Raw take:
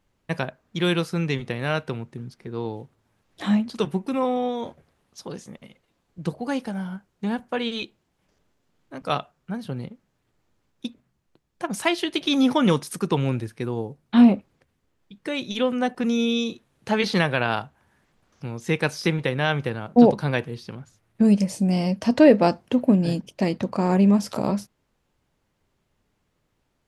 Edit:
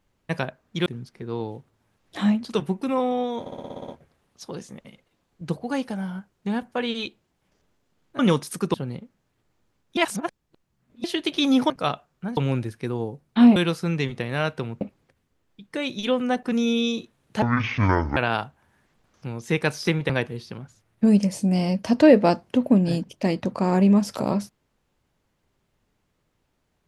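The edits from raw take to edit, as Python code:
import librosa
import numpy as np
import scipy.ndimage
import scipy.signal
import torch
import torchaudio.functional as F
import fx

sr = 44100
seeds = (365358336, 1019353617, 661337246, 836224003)

y = fx.edit(x, sr, fx.move(start_s=0.86, length_s=1.25, to_s=14.33),
    fx.stutter(start_s=4.65, slice_s=0.06, count=9),
    fx.swap(start_s=8.96, length_s=0.67, other_s=12.59, other_length_s=0.55),
    fx.reverse_span(start_s=10.86, length_s=1.07),
    fx.speed_span(start_s=16.94, length_s=0.41, speed=0.55),
    fx.cut(start_s=19.28, length_s=0.99), tone=tone)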